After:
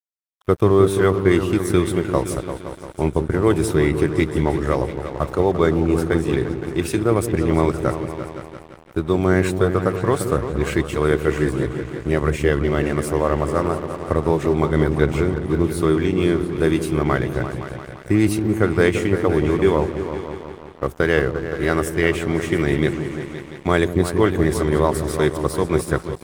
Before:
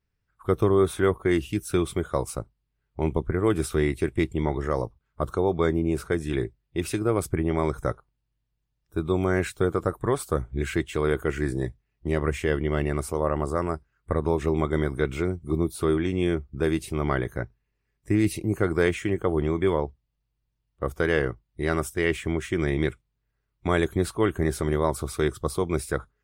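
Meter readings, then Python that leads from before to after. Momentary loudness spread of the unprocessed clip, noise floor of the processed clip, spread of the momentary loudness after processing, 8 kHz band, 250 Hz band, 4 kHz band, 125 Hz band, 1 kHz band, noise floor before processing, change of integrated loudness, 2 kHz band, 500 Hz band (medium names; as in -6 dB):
8 LU, -40 dBFS, 10 LU, +5.0 dB, +7.0 dB, +6.0 dB, +6.5 dB, +6.5 dB, -78 dBFS, +6.5 dB, +6.0 dB, +6.5 dB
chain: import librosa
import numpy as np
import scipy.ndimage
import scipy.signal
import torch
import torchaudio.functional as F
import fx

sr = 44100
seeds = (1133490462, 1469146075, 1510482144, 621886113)

y = scipy.signal.sosfilt(scipy.signal.butter(2, 59.0, 'highpass', fs=sr, output='sos'), x)
y = fx.echo_opening(y, sr, ms=172, hz=400, octaves=2, feedback_pct=70, wet_db=-6)
y = np.sign(y) * np.maximum(np.abs(y) - 10.0 ** (-43.0 / 20.0), 0.0)
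y = F.gain(torch.from_numpy(y), 6.0).numpy()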